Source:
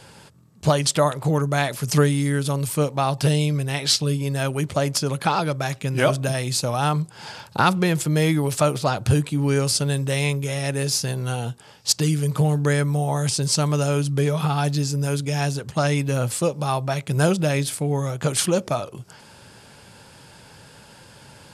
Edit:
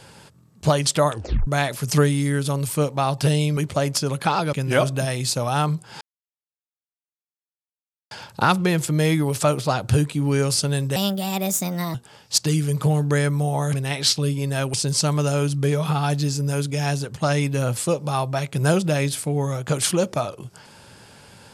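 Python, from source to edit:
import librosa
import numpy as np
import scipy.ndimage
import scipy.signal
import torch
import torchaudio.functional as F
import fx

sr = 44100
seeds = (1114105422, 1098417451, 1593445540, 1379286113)

y = fx.edit(x, sr, fx.tape_stop(start_s=1.11, length_s=0.36),
    fx.move(start_s=3.57, length_s=1.0, to_s=13.28),
    fx.cut(start_s=5.53, length_s=0.27),
    fx.insert_silence(at_s=7.28, length_s=2.1),
    fx.speed_span(start_s=10.13, length_s=1.36, speed=1.38), tone=tone)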